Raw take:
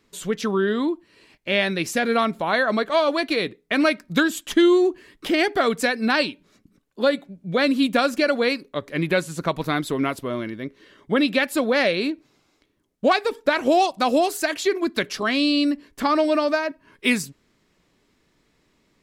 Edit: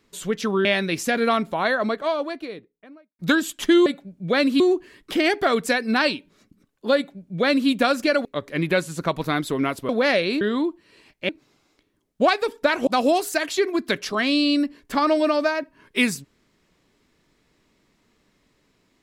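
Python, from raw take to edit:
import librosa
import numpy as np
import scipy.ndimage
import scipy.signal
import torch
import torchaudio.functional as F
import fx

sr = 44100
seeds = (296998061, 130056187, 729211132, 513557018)

y = fx.studio_fade_out(x, sr, start_s=2.28, length_s=1.79)
y = fx.edit(y, sr, fx.move(start_s=0.65, length_s=0.88, to_s=12.12),
    fx.duplicate(start_s=7.1, length_s=0.74, to_s=4.74),
    fx.cut(start_s=8.39, length_s=0.26),
    fx.cut(start_s=10.29, length_s=1.31),
    fx.cut(start_s=13.7, length_s=0.25), tone=tone)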